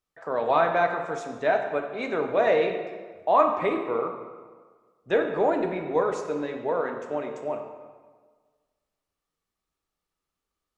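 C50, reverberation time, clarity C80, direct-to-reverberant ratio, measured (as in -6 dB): 6.0 dB, 1.5 s, 7.5 dB, 3.5 dB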